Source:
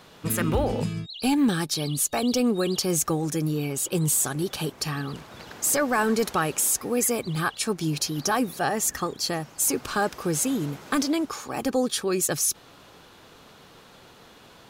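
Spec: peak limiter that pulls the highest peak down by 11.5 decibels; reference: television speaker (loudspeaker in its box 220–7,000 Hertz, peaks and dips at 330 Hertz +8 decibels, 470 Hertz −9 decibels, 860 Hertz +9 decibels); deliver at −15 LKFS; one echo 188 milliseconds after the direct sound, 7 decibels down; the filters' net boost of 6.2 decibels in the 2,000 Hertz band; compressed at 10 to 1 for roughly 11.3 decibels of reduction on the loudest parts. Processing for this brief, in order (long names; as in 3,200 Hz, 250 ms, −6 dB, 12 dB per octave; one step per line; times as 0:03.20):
parametric band 2,000 Hz +8 dB
downward compressor 10 to 1, threshold −29 dBFS
brickwall limiter −26.5 dBFS
loudspeaker in its box 220–7,000 Hz, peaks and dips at 330 Hz +8 dB, 470 Hz −9 dB, 860 Hz +9 dB
single-tap delay 188 ms −7 dB
level +19.5 dB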